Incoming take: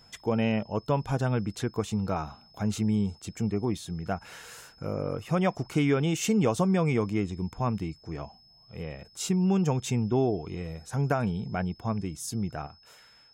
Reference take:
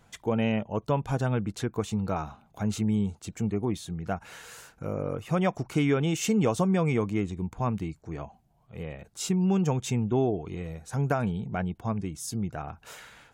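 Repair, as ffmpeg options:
-af "bandreject=f=5.2k:w=30,asetnsamples=n=441:p=0,asendcmd='12.67 volume volume 10dB',volume=0dB"

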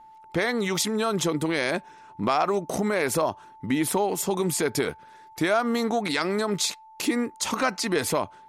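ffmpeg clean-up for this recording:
-af "bandreject=f=880:w=30"

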